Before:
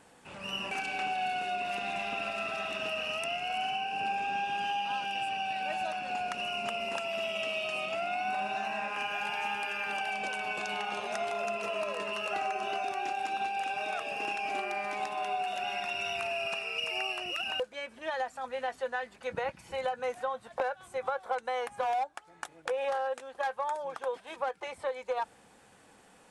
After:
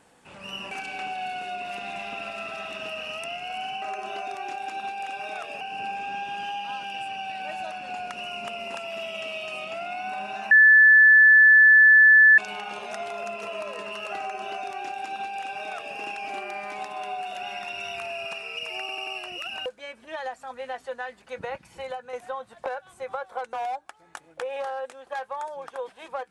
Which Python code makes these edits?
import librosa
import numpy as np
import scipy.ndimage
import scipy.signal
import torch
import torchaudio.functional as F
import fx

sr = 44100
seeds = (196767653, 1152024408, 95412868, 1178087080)

y = fx.edit(x, sr, fx.bleep(start_s=8.72, length_s=1.87, hz=1740.0, db=-10.5),
    fx.duplicate(start_s=12.39, length_s=1.79, to_s=3.82),
    fx.stutter(start_s=17.01, slice_s=0.09, count=4),
    fx.fade_out_to(start_s=19.71, length_s=0.36, floor_db=-6.0),
    fx.cut(start_s=21.47, length_s=0.34), tone=tone)